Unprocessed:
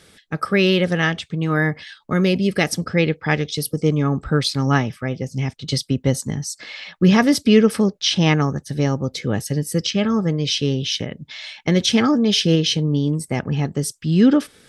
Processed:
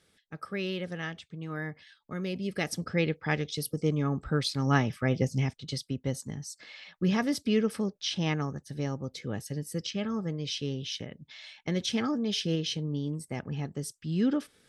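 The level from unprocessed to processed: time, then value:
0:02.21 −17 dB
0:02.87 −9.5 dB
0:04.56 −9.5 dB
0:05.23 −0.5 dB
0:05.74 −13 dB

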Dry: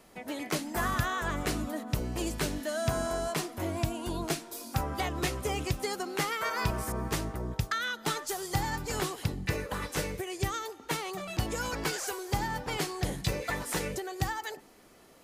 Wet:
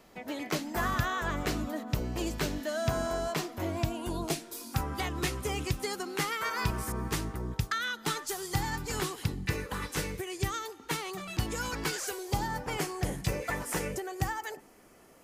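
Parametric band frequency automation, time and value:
parametric band −8 dB 0.52 octaves
0:03.94 9,700 Hz
0:04.16 2,600 Hz
0:04.58 620 Hz
0:11.94 620 Hz
0:12.66 3,900 Hz

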